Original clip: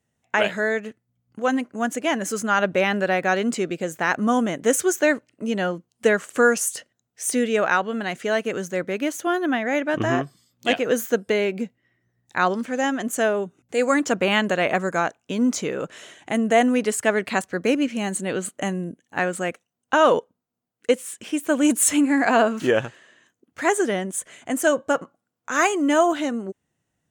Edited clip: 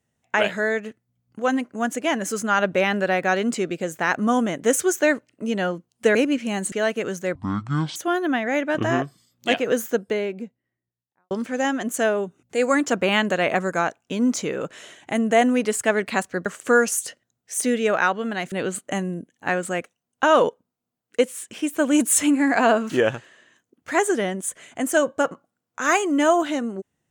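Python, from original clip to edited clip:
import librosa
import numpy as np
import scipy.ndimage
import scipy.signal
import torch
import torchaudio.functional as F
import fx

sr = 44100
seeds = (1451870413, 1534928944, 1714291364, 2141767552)

y = fx.studio_fade_out(x, sr, start_s=10.76, length_s=1.74)
y = fx.edit(y, sr, fx.swap(start_s=6.15, length_s=2.06, other_s=17.65, other_length_s=0.57),
    fx.speed_span(start_s=8.84, length_s=0.31, speed=0.51), tone=tone)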